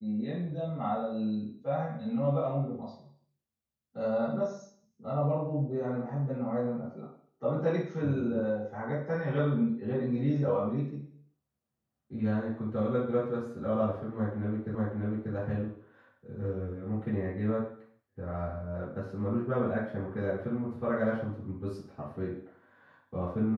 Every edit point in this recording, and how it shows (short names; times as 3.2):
14.75 repeat of the last 0.59 s